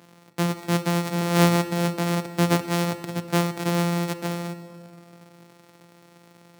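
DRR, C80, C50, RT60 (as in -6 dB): 11.5 dB, 13.5 dB, 12.5 dB, 2.3 s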